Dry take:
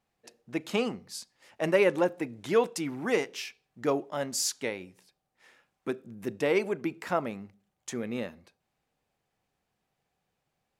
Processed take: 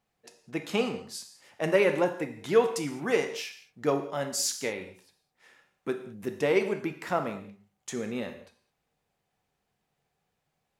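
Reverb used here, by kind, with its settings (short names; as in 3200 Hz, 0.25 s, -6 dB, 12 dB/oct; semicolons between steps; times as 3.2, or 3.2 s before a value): non-linear reverb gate 0.24 s falling, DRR 6 dB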